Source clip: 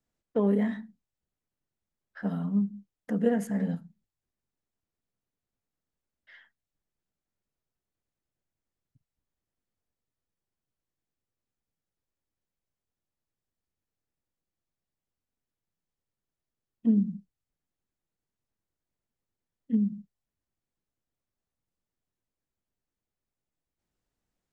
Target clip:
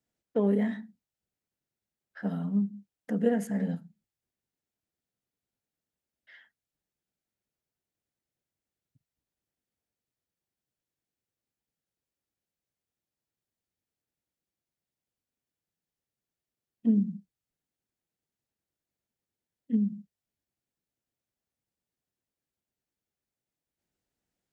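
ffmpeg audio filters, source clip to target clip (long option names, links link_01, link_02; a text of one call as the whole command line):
ffmpeg -i in.wav -af "highpass=frequency=97:poles=1,equalizer=frequency=1100:width=3.1:gain=-5" out.wav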